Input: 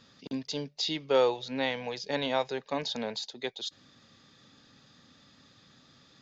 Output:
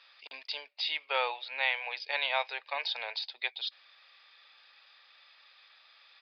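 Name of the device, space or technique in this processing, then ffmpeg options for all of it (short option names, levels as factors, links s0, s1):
musical greeting card: -filter_complex "[0:a]aresample=11025,aresample=44100,highpass=f=710:w=0.5412,highpass=f=710:w=1.3066,equalizer=f=2400:t=o:w=0.47:g=10.5,asettb=1/sr,asplit=3[s0][s1][s2];[s0]atrim=end=0.554[s3];[s1]atrim=start=0.55:end=2.02,asetpts=PTS-STARTPTS,afade=t=in:d=0.004:c=qsin,afade=t=out:st=1.466:d=0.004:c=qsin,bass=f=250:g=-6,treble=f=4000:g=-5[s4];[s2]atrim=start=2.016[s5];[s3][s4]acrossfade=d=0.004:c1=hsin:c2=qsin[s6];[s6][s5]acrossfade=d=0.004:c1=qsin:c2=hsin"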